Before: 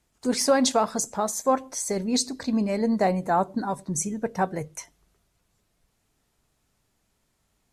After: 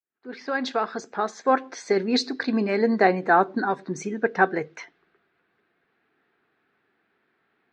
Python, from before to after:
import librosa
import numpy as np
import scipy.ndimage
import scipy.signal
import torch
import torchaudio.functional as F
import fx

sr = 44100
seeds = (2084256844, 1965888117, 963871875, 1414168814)

y = fx.fade_in_head(x, sr, length_s=1.84)
y = fx.env_lowpass(y, sr, base_hz=2500.0, full_db=-24.5)
y = fx.cabinet(y, sr, low_hz=340.0, low_slope=12, high_hz=3900.0, hz=(370.0, 590.0, 960.0, 1600.0, 3100.0), db=(4, -9, -7, 7, -4))
y = F.gain(torch.from_numpy(y), 8.0).numpy()